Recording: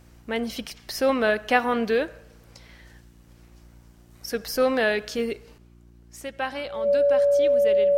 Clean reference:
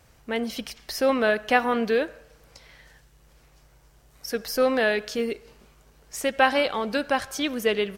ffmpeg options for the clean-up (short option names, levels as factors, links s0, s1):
-af "bandreject=f=58.6:t=h:w=4,bandreject=f=117.2:t=h:w=4,bandreject=f=175.8:t=h:w=4,bandreject=f=234.4:t=h:w=4,bandreject=f=293:t=h:w=4,bandreject=f=351.6:t=h:w=4,bandreject=f=570:w=30,asetnsamples=n=441:p=0,asendcmd='5.58 volume volume 9.5dB',volume=1"